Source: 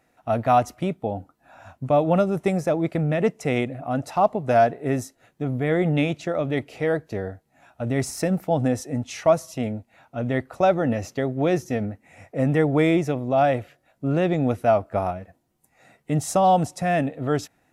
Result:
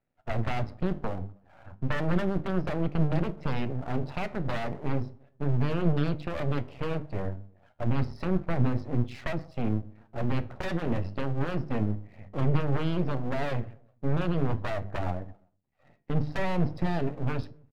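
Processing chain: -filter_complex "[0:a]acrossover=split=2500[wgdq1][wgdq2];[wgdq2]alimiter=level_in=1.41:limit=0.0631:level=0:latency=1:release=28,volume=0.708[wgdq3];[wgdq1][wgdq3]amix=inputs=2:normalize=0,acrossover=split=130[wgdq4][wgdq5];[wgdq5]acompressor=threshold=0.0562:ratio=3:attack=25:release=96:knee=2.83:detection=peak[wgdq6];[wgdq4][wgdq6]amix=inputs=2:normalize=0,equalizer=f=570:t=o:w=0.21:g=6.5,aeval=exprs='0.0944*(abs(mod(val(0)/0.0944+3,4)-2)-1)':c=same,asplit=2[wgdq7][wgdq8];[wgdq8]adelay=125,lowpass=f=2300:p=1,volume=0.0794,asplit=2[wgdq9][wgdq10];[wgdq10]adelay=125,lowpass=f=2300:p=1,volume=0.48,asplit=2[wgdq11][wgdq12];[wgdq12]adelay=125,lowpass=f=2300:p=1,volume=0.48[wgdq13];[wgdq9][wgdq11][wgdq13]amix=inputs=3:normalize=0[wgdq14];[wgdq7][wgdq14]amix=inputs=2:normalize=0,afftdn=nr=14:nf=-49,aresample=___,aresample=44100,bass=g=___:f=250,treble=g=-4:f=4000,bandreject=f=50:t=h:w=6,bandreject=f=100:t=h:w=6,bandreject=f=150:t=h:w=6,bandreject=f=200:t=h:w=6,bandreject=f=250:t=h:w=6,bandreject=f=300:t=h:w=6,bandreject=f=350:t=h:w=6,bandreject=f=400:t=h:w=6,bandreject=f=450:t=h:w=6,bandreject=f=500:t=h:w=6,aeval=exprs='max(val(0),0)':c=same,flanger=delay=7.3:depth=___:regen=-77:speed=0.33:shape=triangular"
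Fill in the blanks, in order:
11025, 14, 6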